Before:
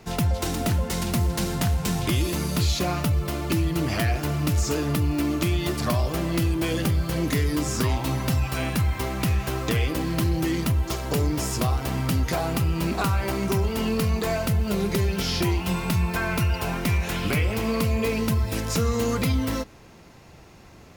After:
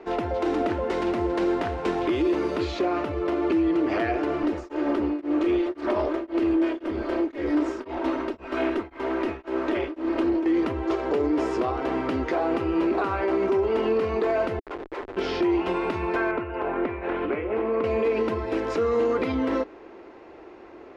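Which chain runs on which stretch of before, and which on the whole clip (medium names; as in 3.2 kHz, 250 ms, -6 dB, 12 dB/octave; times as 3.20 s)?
4.43–10.46 s: comb filter that takes the minimum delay 3.2 ms + tremolo of two beating tones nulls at 1.9 Hz
14.59–15.17 s: high-pass 830 Hz 24 dB/octave + Schmitt trigger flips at -30.5 dBFS
16.31–17.84 s: low-pass 2.1 kHz + compression 4:1, threshold -25 dBFS
whole clip: low-pass 2 kHz 12 dB/octave; resonant low shelf 230 Hz -14 dB, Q 3; peak limiter -19.5 dBFS; trim +3.5 dB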